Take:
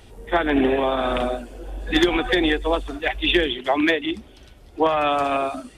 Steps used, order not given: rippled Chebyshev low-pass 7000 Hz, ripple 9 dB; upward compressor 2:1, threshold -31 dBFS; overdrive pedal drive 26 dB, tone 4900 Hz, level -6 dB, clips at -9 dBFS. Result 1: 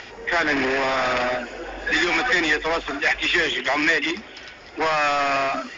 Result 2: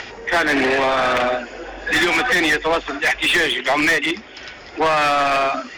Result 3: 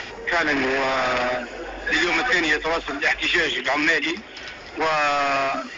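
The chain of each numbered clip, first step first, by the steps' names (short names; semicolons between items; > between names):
overdrive pedal > upward compressor > rippled Chebyshev low-pass; upward compressor > rippled Chebyshev low-pass > overdrive pedal; upward compressor > overdrive pedal > rippled Chebyshev low-pass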